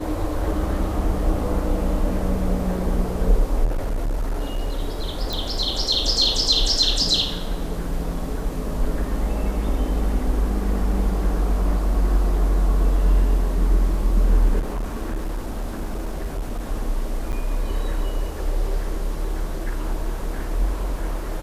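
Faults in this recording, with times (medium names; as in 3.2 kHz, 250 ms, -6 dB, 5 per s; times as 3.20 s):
3.64–4.80 s: clipped -19.5 dBFS
5.33 s: pop
14.59–16.64 s: clipped -22 dBFS
17.32–17.33 s: dropout 9.1 ms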